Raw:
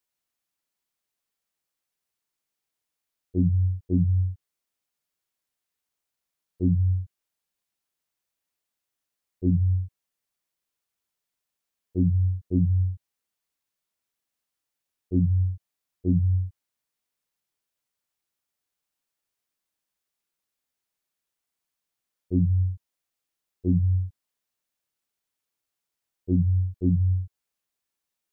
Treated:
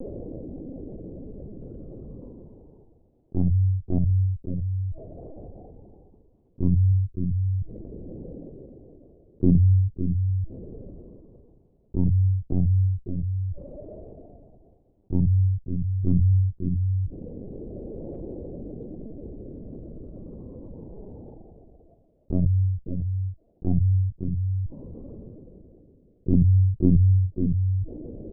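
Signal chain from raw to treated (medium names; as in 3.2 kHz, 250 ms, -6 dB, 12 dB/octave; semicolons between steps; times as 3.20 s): comb filter that takes the minimum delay 0.32 ms; steep low-pass 510 Hz 36 dB/octave; bass shelf 230 Hz -6.5 dB; delay 559 ms -14 dB; reverse; upward compressor, threshold -36 dBFS; reverse; saturation -16.5 dBFS, distortion -23 dB; phaser 0.11 Hz, delay 1.7 ms, feedback 68%; LPC vocoder at 8 kHz pitch kept; level flattener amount 50%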